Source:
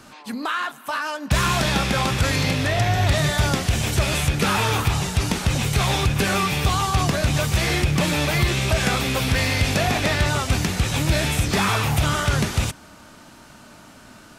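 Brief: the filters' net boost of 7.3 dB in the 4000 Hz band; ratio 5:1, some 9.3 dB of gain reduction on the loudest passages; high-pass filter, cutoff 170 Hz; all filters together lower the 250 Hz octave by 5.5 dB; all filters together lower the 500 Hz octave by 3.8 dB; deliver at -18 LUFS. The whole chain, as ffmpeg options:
-af "highpass=170,equalizer=f=250:t=o:g=-4.5,equalizer=f=500:t=o:g=-4,equalizer=f=4k:t=o:g=9,acompressor=threshold=-27dB:ratio=5,volume=9.5dB"

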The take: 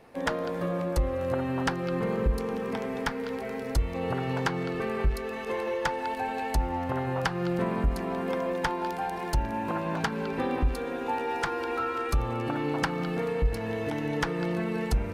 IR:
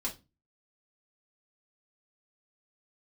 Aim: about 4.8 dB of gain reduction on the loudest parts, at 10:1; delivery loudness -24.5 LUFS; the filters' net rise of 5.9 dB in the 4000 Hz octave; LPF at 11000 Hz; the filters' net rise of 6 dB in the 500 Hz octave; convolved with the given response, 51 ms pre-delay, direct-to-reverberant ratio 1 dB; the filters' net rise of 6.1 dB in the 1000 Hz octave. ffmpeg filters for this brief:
-filter_complex "[0:a]lowpass=11k,equalizer=f=500:t=o:g=5.5,equalizer=f=1k:t=o:g=5.5,equalizer=f=4k:t=o:g=7.5,acompressor=threshold=-23dB:ratio=10,asplit=2[a][b];[1:a]atrim=start_sample=2205,adelay=51[c];[b][c]afir=irnorm=-1:irlink=0,volume=-3dB[d];[a][d]amix=inputs=2:normalize=0,volume=1.5dB"

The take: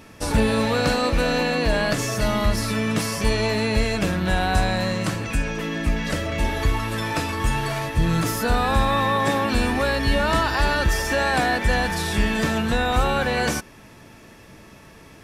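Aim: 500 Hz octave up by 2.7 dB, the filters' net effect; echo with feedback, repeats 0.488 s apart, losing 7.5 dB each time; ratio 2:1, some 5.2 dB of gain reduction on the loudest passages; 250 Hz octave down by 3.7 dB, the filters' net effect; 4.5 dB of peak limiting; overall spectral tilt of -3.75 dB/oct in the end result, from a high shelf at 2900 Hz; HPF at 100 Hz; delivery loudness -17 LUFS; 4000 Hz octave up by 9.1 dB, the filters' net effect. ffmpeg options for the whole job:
-af "highpass=100,equalizer=f=250:t=o:g=-5.5,equalizer=f=500:t=o:g=4,highshelf=f=2.9k:g=7.5,equalizer=f=4k:t=o:g=5,acompressor=threshold=-24dB:ratio=2,alimiter=limit=-15.5dB:level=0:latency=1,aecho=1:1:488|976|1464|1952|2440:0.422|0.177|0.0744|0.0312|0.0131,volume=6.5dB"

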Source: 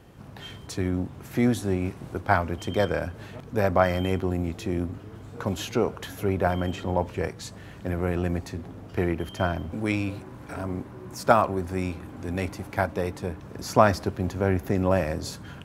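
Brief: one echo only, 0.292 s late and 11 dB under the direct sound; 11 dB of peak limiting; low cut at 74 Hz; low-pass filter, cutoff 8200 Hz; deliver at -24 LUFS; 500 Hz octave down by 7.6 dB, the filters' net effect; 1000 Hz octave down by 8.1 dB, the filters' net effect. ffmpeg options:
-af "highpass=74,lowpass=8.2k,equalizer=f=500:t=o:g=-7.5,equalizer=f=1k:t=o:g=-8.5,alimiter=limit=-20dB:level=0:latency=1,aecho=1:1:292:0.282,volume=9dB"

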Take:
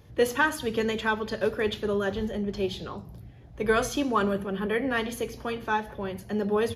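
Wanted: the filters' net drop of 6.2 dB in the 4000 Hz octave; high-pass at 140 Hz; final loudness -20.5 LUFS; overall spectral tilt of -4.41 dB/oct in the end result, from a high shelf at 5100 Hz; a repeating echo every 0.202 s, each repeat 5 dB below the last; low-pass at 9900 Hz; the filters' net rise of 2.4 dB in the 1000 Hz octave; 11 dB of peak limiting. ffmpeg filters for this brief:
-af "highpass=140,lowpass=9.9k,equalizer=f=1k:t=o:g=3.5,equalizer=f=4k:t=o:g=-6.5,highshelf=f=5.1k:g=-5.5,alimiter=limit=-21dB:level=0:latency=1,aecho=1:1:202|404|606|808|1010|1212|1414:0.562|0.315|0.176|0.0988|0.0553|0.031|0.0173,volume=9.5dB"

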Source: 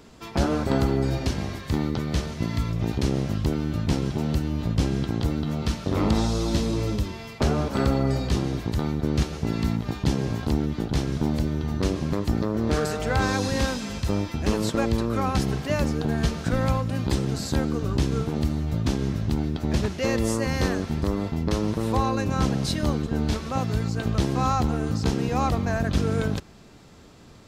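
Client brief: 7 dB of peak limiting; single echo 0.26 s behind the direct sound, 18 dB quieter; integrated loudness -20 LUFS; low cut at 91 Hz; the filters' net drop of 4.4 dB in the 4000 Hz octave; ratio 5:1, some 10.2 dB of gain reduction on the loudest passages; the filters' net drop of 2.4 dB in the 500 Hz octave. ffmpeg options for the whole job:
-af "highpass=91,equalizer=f=500:t=o:g=-3,equalizer=f=4k:t=o:g=-5.5,acompressor=threshold=-32dB:ratio=5,alimiter=level_in=2dB:limit=-24dB:level=0:latency=1,volume=-2dB,aecho=1:1:260:0.126,volume=17dB"

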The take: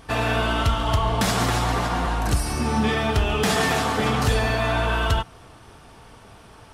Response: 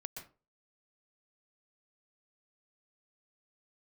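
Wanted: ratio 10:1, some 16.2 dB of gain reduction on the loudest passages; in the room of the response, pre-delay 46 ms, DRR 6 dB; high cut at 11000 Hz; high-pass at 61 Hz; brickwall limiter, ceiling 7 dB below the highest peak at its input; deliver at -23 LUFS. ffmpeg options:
-filter_complex "[0:a]highpass=61,lowpass=11k,acompressor=threshold=-34dB:ratio=10,alimiter=level_in=5dB:limit=-24dB:level=0:latency=1,volume=-5dB,asplit=2[a][b];[1:a]atrim=start_sample=2205,adelay=46[c];[b][c]afir=irnorm=-1:irlink=0,volume=-3dB[d];[a][d]amix=inputs=2:normalize=0,volume=15.5dB"

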